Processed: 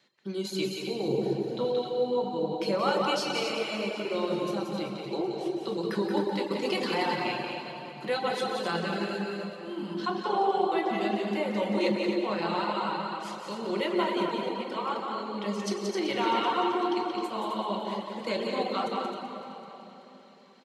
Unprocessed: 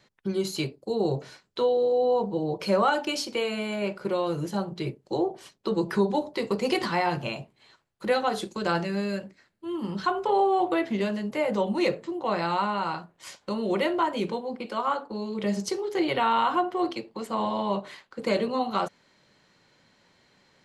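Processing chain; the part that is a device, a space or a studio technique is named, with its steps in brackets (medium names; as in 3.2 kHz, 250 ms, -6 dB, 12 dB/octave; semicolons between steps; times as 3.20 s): stadium PA (high-pass 150 Hz 24 dB/octave; peaking EQ 3.4 kHz +5.5 dB 1 oct; loudspeakers at several distances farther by 61 m -5 dB, 90 m -7 dB; reverberation RT60 3.1 s, pre-delay 10 ms, DRR 0.5 dB); reverb removal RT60 0.51 s; 1.08–1.65 s: tilt EQ -2.5 dB/octave; two-band feedback delay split 490 Hz, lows 264 ms, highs 382 ms, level -15 dB; trim -6.5 dB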